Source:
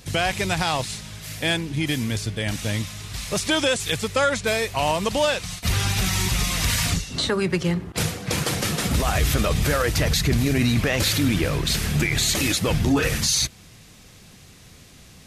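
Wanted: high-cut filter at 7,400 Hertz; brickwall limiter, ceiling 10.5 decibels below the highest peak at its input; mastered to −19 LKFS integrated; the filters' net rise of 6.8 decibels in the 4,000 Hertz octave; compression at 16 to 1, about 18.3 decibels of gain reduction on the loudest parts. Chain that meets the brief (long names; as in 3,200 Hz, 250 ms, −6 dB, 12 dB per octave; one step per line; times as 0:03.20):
low-pass filter 7,400 Hz
parametric band 4,000 Hz +8.5 dB
downward compressor 16 to 1, threshold −32 dBFS
level +17.5 dB
brickwall limiter −9.5 dBFS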